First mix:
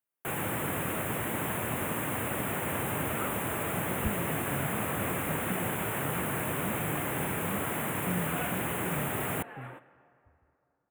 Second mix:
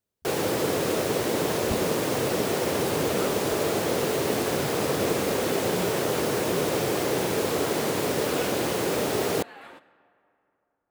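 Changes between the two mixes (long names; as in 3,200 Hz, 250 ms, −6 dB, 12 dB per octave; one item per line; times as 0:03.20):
speech: entry −2.35 s
first sound: add parametric band 440 Hz +14.5 dB 1.3 octaves
master: remove Butterworth band-reject 5,000 Hz, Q 0.75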